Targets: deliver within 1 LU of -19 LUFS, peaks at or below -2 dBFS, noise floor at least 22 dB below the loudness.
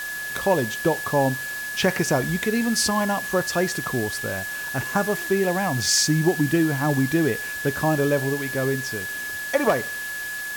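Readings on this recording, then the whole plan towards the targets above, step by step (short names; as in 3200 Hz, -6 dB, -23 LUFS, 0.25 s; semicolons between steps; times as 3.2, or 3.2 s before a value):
steady tone 1700 Hz; tone level -29 dBFS; noise floor -31 dBFS; noise floor target -45 dBFS; loudness -23.0 LUFS; peak -7.0 dBFS; loudness target -19.0 LUFS
-> notch 1700 Hz, Q 30; noise print and reduce 14 dB; gain +4 dB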